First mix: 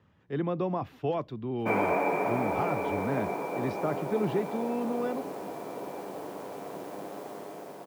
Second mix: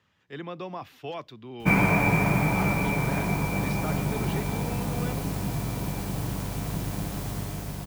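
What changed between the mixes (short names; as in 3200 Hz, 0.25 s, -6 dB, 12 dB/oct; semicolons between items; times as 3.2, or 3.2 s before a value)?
background: remove ladder high-pass 340 Hz, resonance 25%; master: add tilt shelf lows -9 dB, about 1400 Hz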